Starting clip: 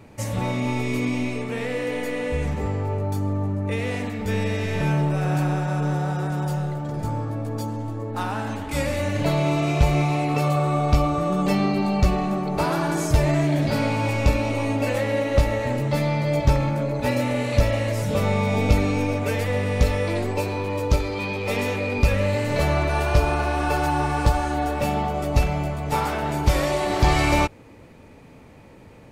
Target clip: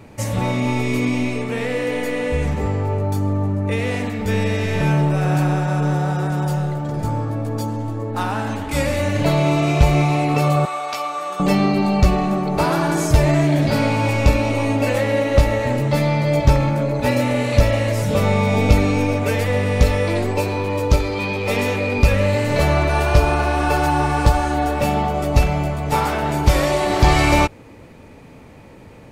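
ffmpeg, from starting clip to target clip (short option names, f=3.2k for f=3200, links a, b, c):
-filter_complex "[0:a]asettb=1/sr,asplit=3[a][b][c];[a]atrim=end=10.654[d];[b]atrim=start=10.65:end=11.4,asetpts=PTS-STARTPTS,afade=t=in:d=0.004:c=qsin,afade=t=out:st=0.746:d=0.004:c=qsin,highpass=930[e];[c]atrim=start=11.396[f];[d][e]acrossfade=d=0.004:c1=hsin:c2=qsin[g];[g][f]acrossfade=d=0.004:c1=qsin:c2=hsin,volume=4.5dB"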